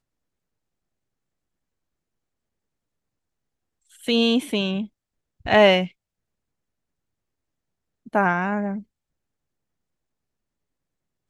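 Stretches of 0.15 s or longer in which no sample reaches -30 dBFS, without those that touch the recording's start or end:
4.85–5.46 s
5.87–8.15 s

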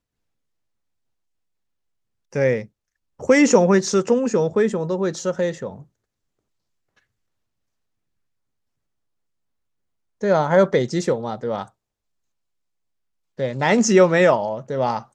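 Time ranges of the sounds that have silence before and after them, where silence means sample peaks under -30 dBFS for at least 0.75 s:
2.35–5.74 s
10.23–11.64 s

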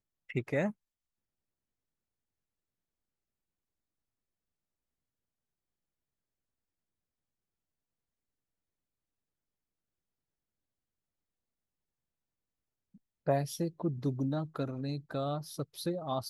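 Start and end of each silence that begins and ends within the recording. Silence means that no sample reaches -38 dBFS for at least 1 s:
0.71–13.27 s

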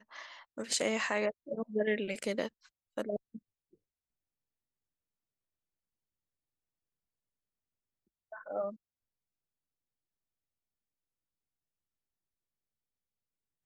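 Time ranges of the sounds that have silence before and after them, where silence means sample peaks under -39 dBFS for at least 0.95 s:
8.33–8.70 s

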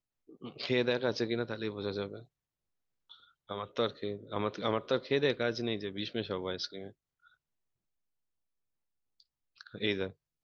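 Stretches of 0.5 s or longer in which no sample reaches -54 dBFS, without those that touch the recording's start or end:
2.25–3.10 s
7.27–9.20 s

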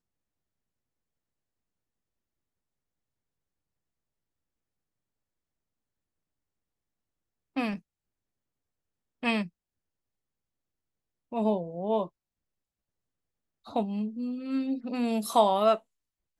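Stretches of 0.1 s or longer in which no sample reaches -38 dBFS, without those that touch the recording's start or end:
7.76–9.23 s
9.47–11.32 s
12.07–13.68 s

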